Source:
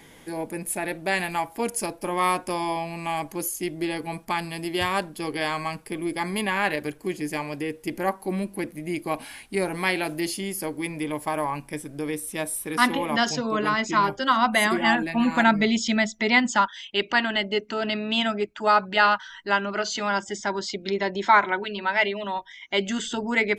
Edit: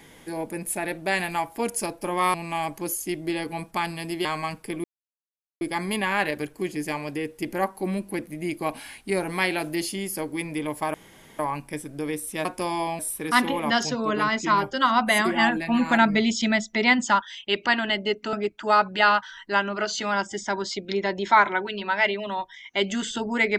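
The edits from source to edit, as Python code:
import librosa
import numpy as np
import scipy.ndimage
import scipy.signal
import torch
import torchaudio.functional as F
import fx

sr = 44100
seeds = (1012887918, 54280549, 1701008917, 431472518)

y = fx.edit(x, sr, fx.move(start_s=2.34, length_s=0.54, to_s=12.45),
    fx.cut(start_s=4.79, length_s=0.68),
    fx.insert_silence(at_s=6.06, length_s=0.77),
    fx.insert_room_tone(at_s=11.39, length_s=0.45),
    fx.cut(start_s=17.79, length_s=0.51), tone=tone)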